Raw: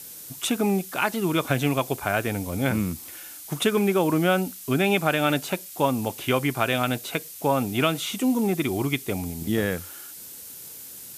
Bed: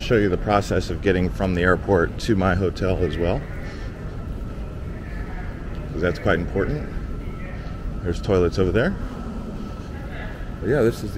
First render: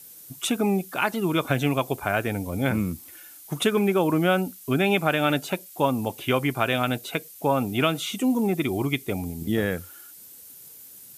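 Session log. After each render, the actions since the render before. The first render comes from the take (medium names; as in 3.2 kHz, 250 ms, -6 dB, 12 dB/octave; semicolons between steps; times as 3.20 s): noise reduction 8 dB, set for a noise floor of -41 dBFS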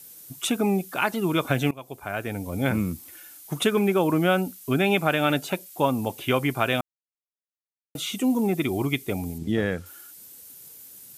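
1.71–2.65 s: fade in, from -21.5 dB; 6.81–7.95 s: mute; 9.38–9.86 s: distance through air 60 m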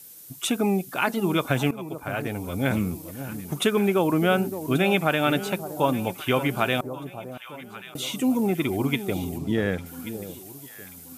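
echo whose repeats swap between lows and highs 567 ms, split 950 Hz, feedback 64%, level -11 dB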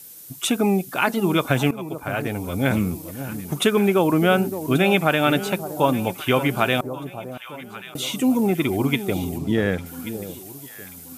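trim +3.5 dB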